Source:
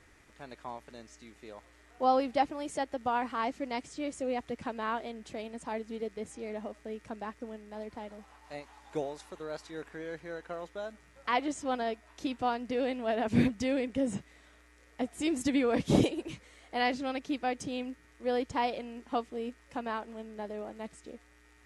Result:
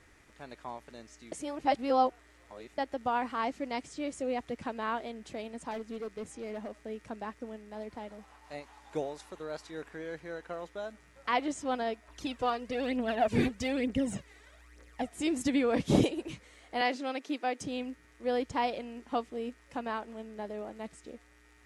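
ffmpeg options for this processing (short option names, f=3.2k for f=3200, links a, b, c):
-filter_complex "[0:a]asettb=1/sr,asplit=3[a][b][c];[a]atrim=end=5.714[d];[b]atrim=start=5.71:end=6.84,asetpts=PTS-STARTPTS,afade=t=in:d=0.004:c=qsin,afade=t=out:st=1.126:d=0.004:c=qsin,asoftclip=type=hard:threshold=-34dB[e];[c]atrim=start=6.836[f];[d][e]acrossfade=d=0.004:c1=hsin:c2=qsin[g];[g][f]acrossfade=d=0.004:c1=qsin:c2=hsin,asettb=1/sr,asplit=3[h][i][j];[h]atrim=end=12.084[k];[i]atrim=start=12.08:end=15.09,asetpts=PTS-STARTPTS,afade=t=in:d=0.004:c=qsin,afade=t=out:st=3.006:d=0.004:c=qsin,aphaser=in_gain=1:out_gain=1:delay=2.7:decay=0.6:speed=1.1:type=triangular[l];[j]atrim=start=15.086[m];[k][l]acrossfade=d=0.004:c1=hsin:c2=qsin[n];[n][m]acrossfade=d=0.004:c1=qsin:c2=hsin,asettb=1/sr,asplit=3[o][p][q];[o]atrim=end=16.814[r];[p]atrim=start=16.81:end=17.61,asetpts=PTS-STARTPTS,afade=t=in:d=0.004:c=qsin,afade=t=out:st=0.796:d=0.004:c=qsin,highpass=f=260:w=0.5412,highpass=f=260:w=1.3066[s];[q]atrim=start=17.606[t];[r][s]acrossfade=d=0.004:c1=hsin:c2=qsin[u];[u][t]acrossfade=d=0.004:c1=qsin:c2=hsin,asplit=3[v][w][x];[v]atrim=end=1.322[y];[w]atrim=start=1.318:end=2.782,asetpts=PTS-STARTPTS,areverse[z];[x]atrim=start=2.778[aa];[y][z]acrossfade=d=0.004:c1=hsin:c2=hsin[ab];[ab][aa]acrossfade=d=0.004:c1=hsin:c2=hsin"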